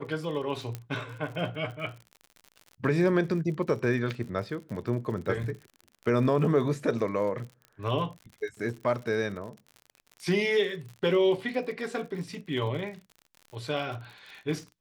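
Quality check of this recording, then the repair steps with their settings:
crackle 60/s -38 dBFS
0.75 pop -20 dBFS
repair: de-click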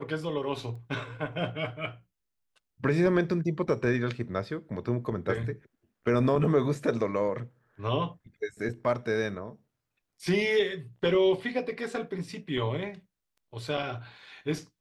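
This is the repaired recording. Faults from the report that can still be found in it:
0.75 pop

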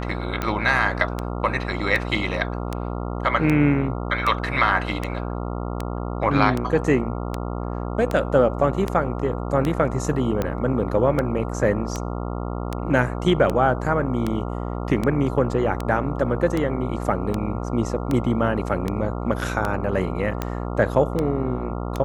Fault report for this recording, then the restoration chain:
buzz 60 Hz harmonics 23 -28 dBFS
tick 78 rpm -11 dBFS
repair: de-click; de-hum 60 Hz, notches 23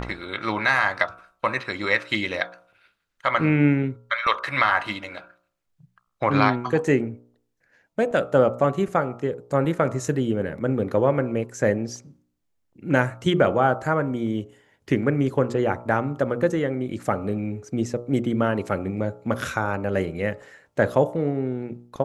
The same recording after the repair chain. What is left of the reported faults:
none

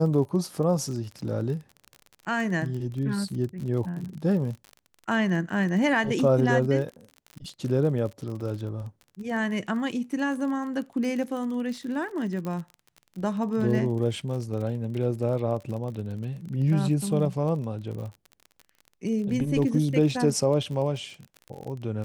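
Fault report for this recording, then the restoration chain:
crackle 41/s -34 dBFS
12.45 pop -22 dBFS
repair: de-click

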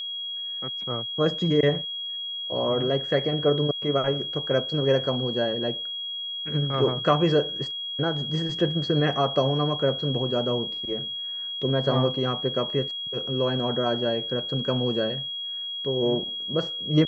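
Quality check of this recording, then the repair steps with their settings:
tone 3300 Hz -30 dBFS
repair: notch 3300 Hz, Q 30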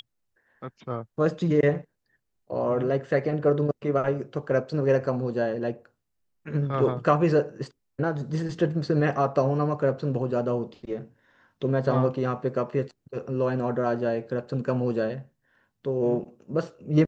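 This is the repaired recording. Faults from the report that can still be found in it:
none

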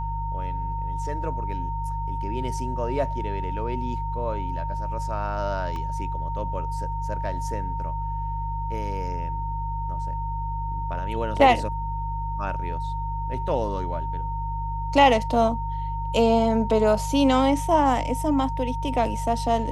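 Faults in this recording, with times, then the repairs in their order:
hum 50 Hz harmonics 3 -30 dBFS
tone 920 Hz -30 dBFS
5.76 gap 2.1 ms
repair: de-hum 50 Hz, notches 3; notch 920 Hz, Q 30; interpolate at 5.76, 2.1 ms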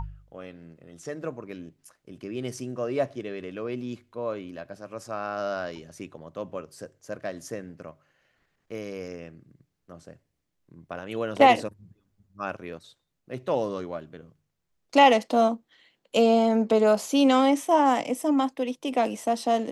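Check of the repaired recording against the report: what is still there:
none

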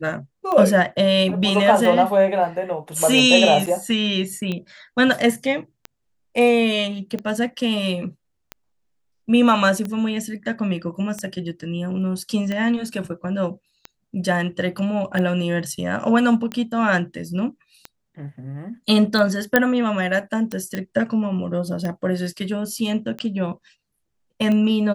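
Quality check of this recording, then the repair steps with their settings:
tick 45 rpm -15 dBFS
3.66–3.67 gap 6.5 ms
19.56 pop -1 dBFS
20.75 pop -13 dBFS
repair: de-click; interpolate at 3.66, 6.5 ms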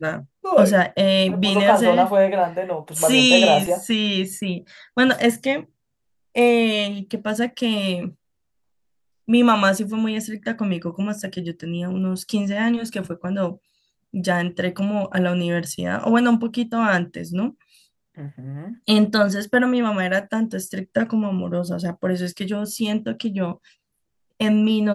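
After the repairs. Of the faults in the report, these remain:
none

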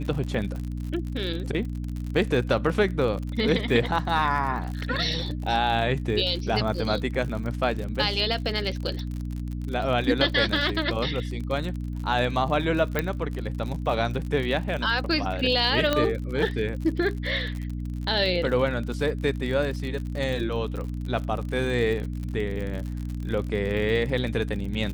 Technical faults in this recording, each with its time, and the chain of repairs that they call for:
crackle 53/s -31 dBFS
hum 60 Hz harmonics 5 -31 dBFS
12.99 pop -10 dBFS
15.93 pop -9 dBFS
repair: de-click; de-hum 60 Hz, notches 5

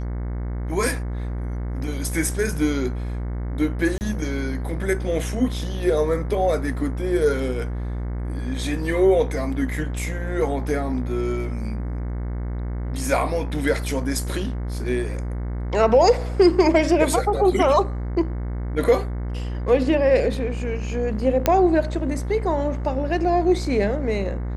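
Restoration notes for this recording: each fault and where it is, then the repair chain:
buzz 60 Hz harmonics 37 -27 dBFS
3.98–4.01 gap 29 ms
21.46 pop -3 dBFS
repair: de-click; de-hum 60 Hz, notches 37; interpolate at 3.98, 29 ms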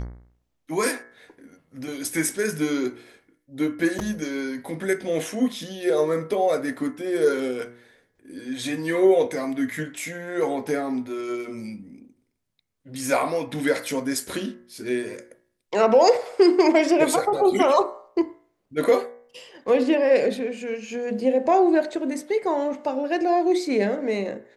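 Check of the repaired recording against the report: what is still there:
none

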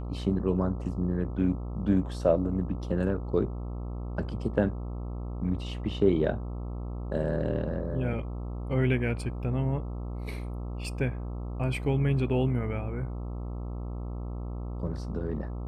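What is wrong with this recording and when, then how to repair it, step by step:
buzz 60 Hz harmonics 22 -35 dBFS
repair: de-hum 60 Hz, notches 22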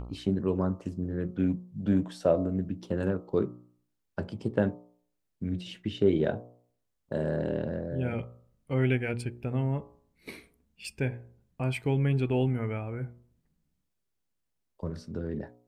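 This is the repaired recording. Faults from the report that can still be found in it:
none

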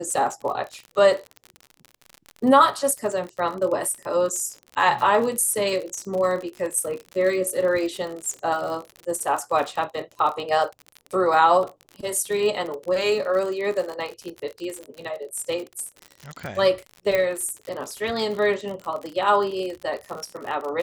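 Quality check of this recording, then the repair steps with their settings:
crackle 56/s -29 dBFS
17.15 pop -10 dBFS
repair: de-click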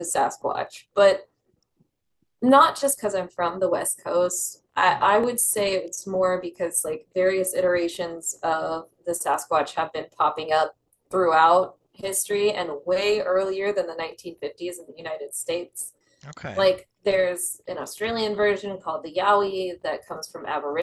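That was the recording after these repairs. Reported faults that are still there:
17.15 pop

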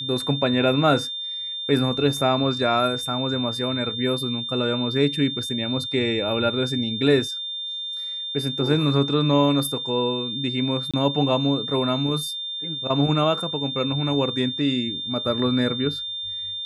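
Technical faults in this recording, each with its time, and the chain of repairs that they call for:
tone 3600 Hz -28 dBFS
10.91–10.94 gap 26 ms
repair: notch 3600 Hz, Q 30; interpolate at 10.91, 26 ms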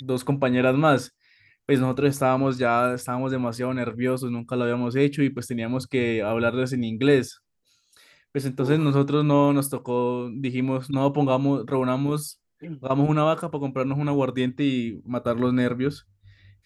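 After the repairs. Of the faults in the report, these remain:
none

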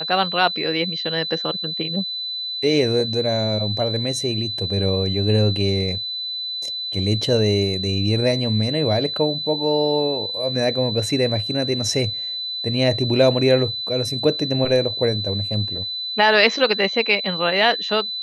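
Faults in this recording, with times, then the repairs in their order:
tone 4000 Hz -25 dBFS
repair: notch 4000 Hz, Q 30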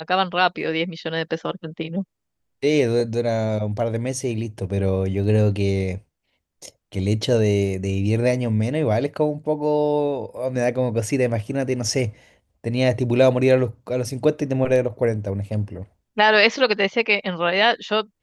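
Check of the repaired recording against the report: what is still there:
none

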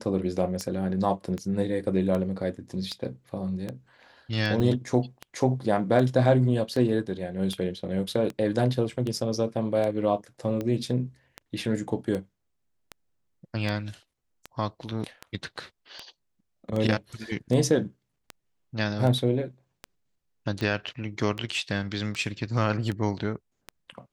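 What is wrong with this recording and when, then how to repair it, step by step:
tick 78 rpm -19 dBFS
4.6 gap 2.3 ms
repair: de-click; interpolate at 4.6, 2.3 ms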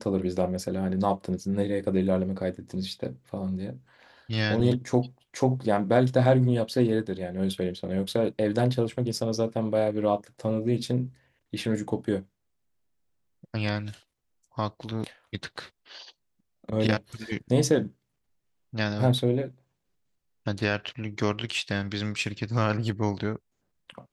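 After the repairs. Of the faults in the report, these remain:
none

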